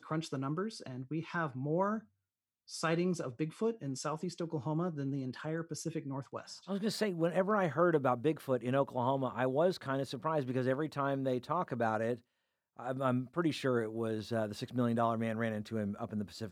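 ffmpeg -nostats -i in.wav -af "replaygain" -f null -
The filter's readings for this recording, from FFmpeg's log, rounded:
track_gain = +15.3 dB
track_peak = 0.116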